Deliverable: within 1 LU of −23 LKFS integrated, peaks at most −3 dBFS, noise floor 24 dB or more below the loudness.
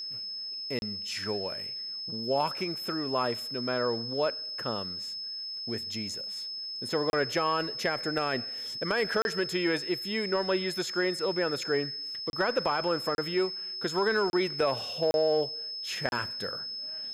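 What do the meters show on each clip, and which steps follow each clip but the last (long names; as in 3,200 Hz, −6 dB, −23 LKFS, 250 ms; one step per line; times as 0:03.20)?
number of dropouts 8; longest dropout 31 ms; interfering tone 5,200 Hz; level of the tone −35 dBFS; integrated loudness −30.0 LKFS; sample peak −13.0 dBFS; target loudness −23.0 LKFS
→ repair the gap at 0:00.79/0:07.10/0:09.22/0:12.30/0:13.15/0:14.30/0:15.11/0:16.09, 31 ms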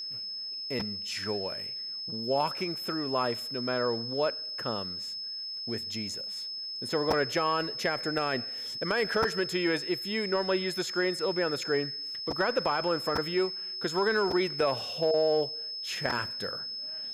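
number of dropouts 0; interfering tone 5,200 Hz; level of the tone −35 dBFS
→ notch filter 5,200 Hz, Q 30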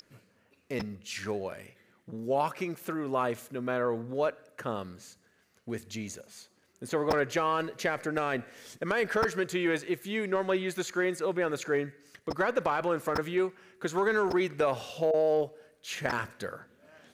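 interfering tone none found; integrated loudness −31.0 LKFS; sample peak −12.5 dBFS; target loudness −23.0 LKFS
→ level +8 dB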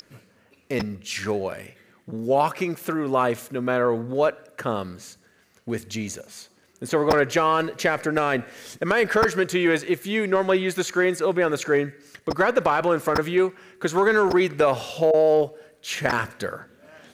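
integrated loudness −23.0 LKFS; sample peak −4.5 dBFS; background noise floor −60 dBFS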